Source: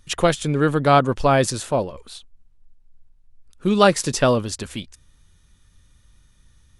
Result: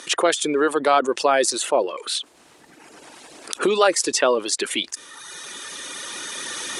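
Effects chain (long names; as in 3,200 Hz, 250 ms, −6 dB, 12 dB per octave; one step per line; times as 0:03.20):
camcorder AGC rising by 10 dB per second
reverb reduction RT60 0.94 s
Chebyshev band-pass filter 350–9,600 Hz, order 3
envelope flattener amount 50%
level −2 dB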